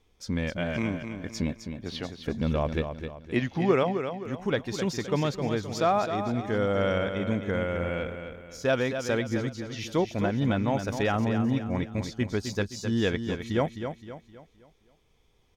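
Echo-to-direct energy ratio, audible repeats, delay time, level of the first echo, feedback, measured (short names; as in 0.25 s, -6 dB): -7.0 dB, 4, 0.26 s, -8.0 dB, 40%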